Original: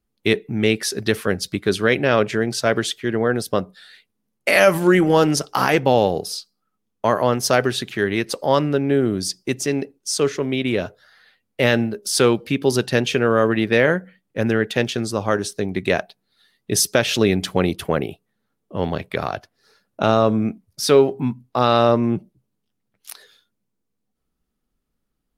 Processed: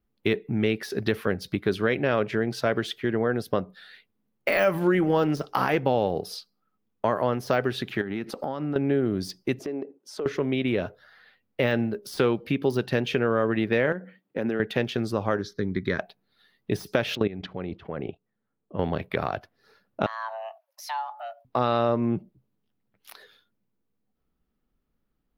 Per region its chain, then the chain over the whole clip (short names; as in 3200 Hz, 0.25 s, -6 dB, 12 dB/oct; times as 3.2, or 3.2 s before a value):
8.01–8.76 compressor 16:1, threshold -28 dBFS + small resonant body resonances 230/770/1300 Hz, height 8 dB, ringing for 20 ms
9.59–10.26 HPF 370 Hz + tilt shelf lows +10 dB, about 1200 Hz + compressor 5:1, threshold -29 dBFS
13.92–14.6 HPF 240 Hz + compressor 4:1, threshold -26 dBFS + low shelf 440 Hz +7 dB
15.41–15.99 LPF 9800 Hz + fixed phaser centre 2700 Hz, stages 6
17.15–18.79 air absorption 200 m + level quantiser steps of 16 dB
20.06–21.45 HPF 680 Hz 6 dB/oct + compressor 2:1, threshold -36 dBFS + frequency shift +450 Hz
whole clip: de-esser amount 45%; bell 7900 Hz -15 dB 1.3 oct; compressor 2:1, threshold -24 dBFS